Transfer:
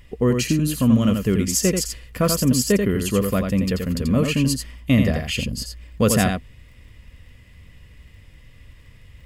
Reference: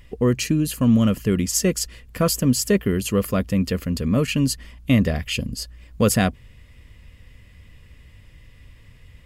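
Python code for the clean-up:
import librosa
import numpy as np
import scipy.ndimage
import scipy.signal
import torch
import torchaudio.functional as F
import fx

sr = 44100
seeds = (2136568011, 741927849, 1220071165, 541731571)

y = fx.fix_declick_ar(x, sr, threshold=6.5)
y = fx.fix_echo_inverse(y, sr, delay_ms=86, level_db=-5.5)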